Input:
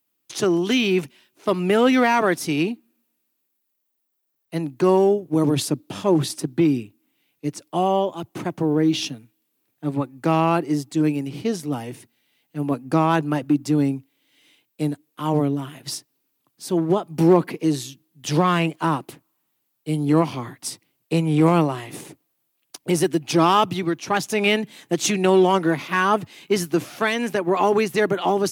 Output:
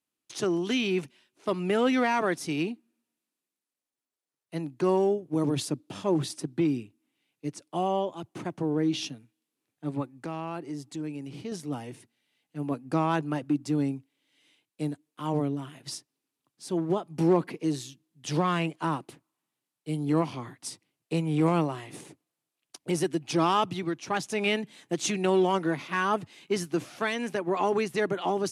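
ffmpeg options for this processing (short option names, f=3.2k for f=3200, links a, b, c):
-filter_complex "[0:a]asettb=1/sr,asplit=3[a][b][c];[a]atrim=end=10.154[d];[b]atrim=start=10.15:end=11.52,asetpts=PTS-STARTPTS,afade=t=in:d=0.004:c=qsin,afade=t=out:st=1.366:d=0.004:c=qsin,acompressor=threshold=-29dB:ratio=2:attack=3.2:release=140:knee=1:detection=peak[e];[c]atrim=start=11.516[f];[d][e]acrossfade=d=0.004:c1=hsin:c2=qsin[g];[g][f]acrossfade=d=0.004:c1=qsin:c2=hsin,lowpass=f=11k:w=0.5412,lowpass=f=11k:w=1.3066,volume=-7.5dB"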